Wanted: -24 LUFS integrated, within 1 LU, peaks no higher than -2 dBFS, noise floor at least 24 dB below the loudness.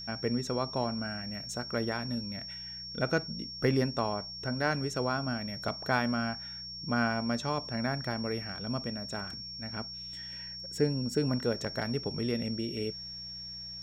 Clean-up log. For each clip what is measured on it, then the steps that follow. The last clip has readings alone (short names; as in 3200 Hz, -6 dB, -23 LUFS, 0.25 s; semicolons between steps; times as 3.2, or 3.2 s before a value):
hum 60 Hz; harmonics up to 180 Hz; hum level -54 dBFS; steady tone 5500 Hz; tone level -40 dBFS; loudness -33.0 LUFS; peak -14.5 dBFS; loudness target -24.0 LUFS
-> de-hum 60 Hz, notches 3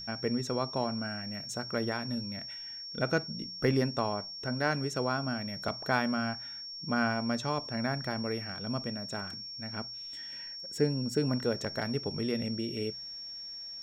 hum none; steady tone 5500 Hz; tone level -40 dBFS
-> notch 5500 Hz, Q 30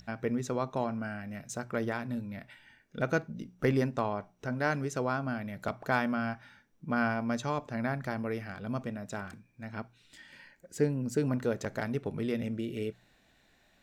steady tone none; loudness -33.5 LUFS; peak -14.5 dBFS; loudness target -24.0 LUFS
-> gain +9.5 dB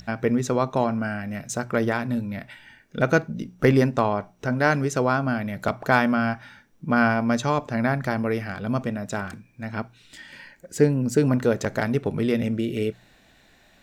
loudness -24.0 LUFS; peak -5.0 dBFS; noise floor -57 dBFS